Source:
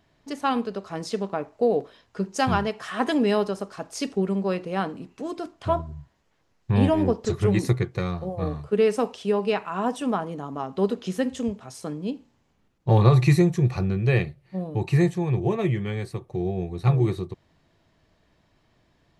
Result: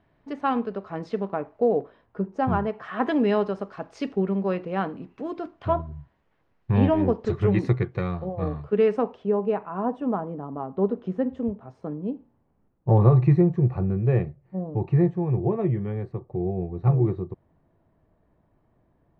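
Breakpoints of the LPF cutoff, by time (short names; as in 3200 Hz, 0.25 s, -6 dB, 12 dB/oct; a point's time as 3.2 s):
1.5 s 2000 Hz
2.39 s 1000 Hz
3.18 s 2400 Hz
8.79 s 2400 Hz
9.3 s 1000 Hz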